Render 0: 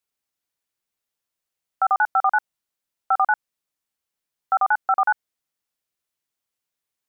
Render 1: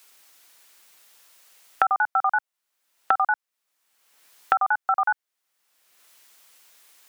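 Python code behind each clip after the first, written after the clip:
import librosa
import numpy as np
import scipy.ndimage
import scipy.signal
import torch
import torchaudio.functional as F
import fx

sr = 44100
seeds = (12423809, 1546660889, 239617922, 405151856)

y = fx.highpass(x, sr, hz=880.0, slope=6)
y = fx.band_squash(y, sr, depth_pct=100)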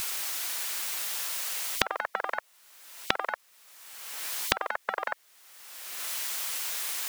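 y = fx.low_shelf(x, sr, hz=400.0, db=-7.0)
y = fx.spectral_comp(y, sr, ratio=10.0)
y = F.gain(torch.from_numpy(y), 4.0).numpy()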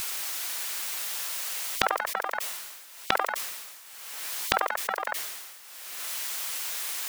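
y = fx.sustainer(x, sr, db_per_s=39.0)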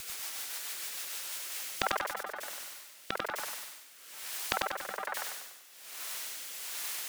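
y = fx.rotary_switch(x, sr, hz=6.7, then_hz=1.2, switch_at_s=1.05)
y = fx.echo_feedback(y, sr, ms=97, feedback_pct=43, wet_db=-3.0)
y = F.gain(torch.from_numpy(y), -5.0).numpy()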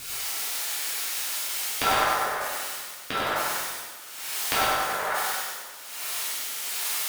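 y = fx.rev_plate(x, sr, seeds[0], rt60_s=1.4, hf_ratio=0.8, predelay_ms=0, drr_db=-9.5)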